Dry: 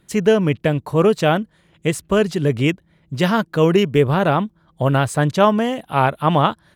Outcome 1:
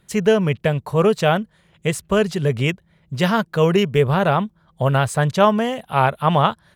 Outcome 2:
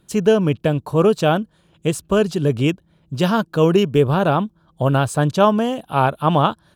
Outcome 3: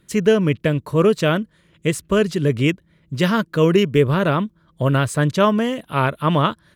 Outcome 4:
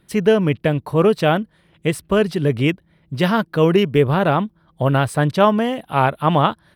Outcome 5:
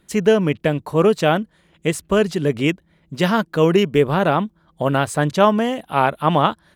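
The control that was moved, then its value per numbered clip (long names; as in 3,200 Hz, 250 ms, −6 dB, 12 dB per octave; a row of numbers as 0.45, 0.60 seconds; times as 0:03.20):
parametric band, centre frequency: 300, 2,000, 780, 6,900, 120 Hertz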